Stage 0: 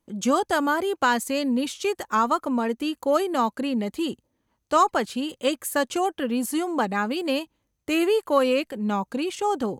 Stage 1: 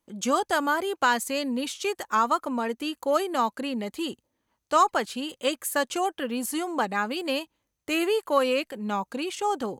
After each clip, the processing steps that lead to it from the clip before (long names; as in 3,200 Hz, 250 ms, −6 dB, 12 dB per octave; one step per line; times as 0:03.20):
low-shelf EQ 400 Hz −7.5 dB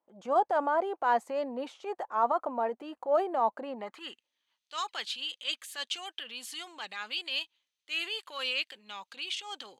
transient designer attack −9 dB, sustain +3 dB
band-pass filter sweep 710 Hz → 3,400 Hz, 0:03.71–0:04.30
level +4.5 dB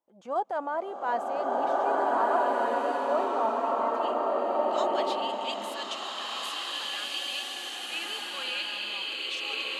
slow-attack reverb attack 1,690 ms, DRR −6.5 dB
level −3.5 dB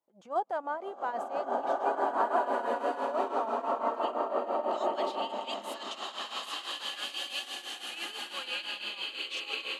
shaped tremolo triangle 6 Hz, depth 80%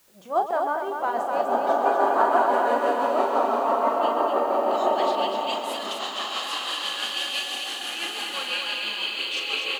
background noise white −68 dBFS
on a send: loudspeakers that aren't time-aligned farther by 13 metres −8 dB, 44 metres −11 dB, 85 metres −5 dB
on the sum: level +7 dB